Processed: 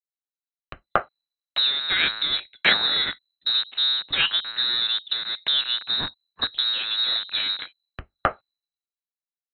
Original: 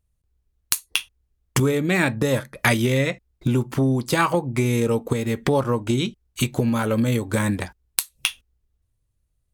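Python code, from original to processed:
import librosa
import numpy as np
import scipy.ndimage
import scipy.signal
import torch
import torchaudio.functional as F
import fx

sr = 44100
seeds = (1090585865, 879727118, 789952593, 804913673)

y = fx.rattle_buzz(x, sr, strikes_db=-32.0, level_db=-20.0)
y = fx.freq_invert(y, sr, carrier_hz=4000)
y = fx.band_widen(y, sr, depth_pct=100)
y = F.gain(torch.from_numpy(y), -4.0).numpy()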